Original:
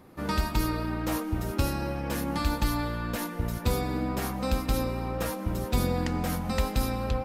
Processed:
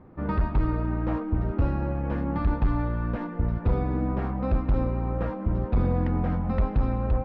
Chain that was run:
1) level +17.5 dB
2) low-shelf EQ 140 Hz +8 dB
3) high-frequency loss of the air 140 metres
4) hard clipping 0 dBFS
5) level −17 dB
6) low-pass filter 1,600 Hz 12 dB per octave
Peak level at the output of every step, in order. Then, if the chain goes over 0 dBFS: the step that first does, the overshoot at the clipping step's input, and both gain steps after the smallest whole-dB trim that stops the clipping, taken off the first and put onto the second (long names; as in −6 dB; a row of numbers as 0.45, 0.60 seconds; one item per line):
+5.0, +9.5, +9.5, 0.0, −17.0, −17.0 dBFS
step 1, 9.5 dB
step 1 +7.5 dB, step 5 −7 dB